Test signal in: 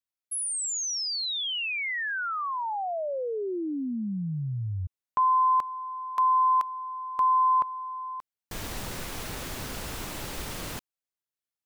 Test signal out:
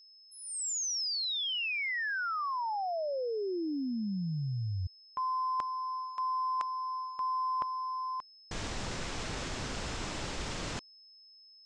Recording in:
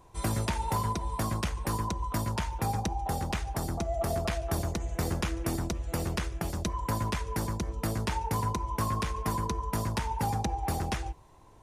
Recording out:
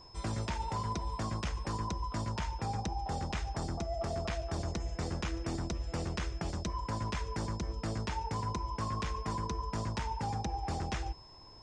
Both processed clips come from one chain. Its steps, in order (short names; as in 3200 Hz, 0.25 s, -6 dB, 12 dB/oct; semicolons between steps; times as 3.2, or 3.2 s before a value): steep low-pass 7800 Hz 36 dB/oct; reverse; compressor 6:1, threshold -32 dBFS; reverse; whine 5200 Hz -55 dBFS